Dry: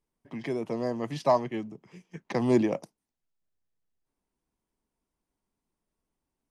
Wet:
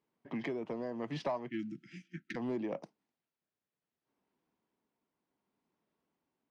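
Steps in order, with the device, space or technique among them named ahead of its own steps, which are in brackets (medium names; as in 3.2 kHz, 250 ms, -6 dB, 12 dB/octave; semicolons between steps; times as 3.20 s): AM radio (band-pass 160–3400 Hz; compression 8:1, threshold -35 dBFS, peak gain reduction 17.5 dB; saturation -29 dBFS, distortion -20 dB; tremolo 0.69 Hz, depth 28%); 1.59–2.08 s: treble shelf 3.6 kHz +11.5 dB; 1.49–2.36 s: spectral selection erased 360–1300 Hz; trim +4 dB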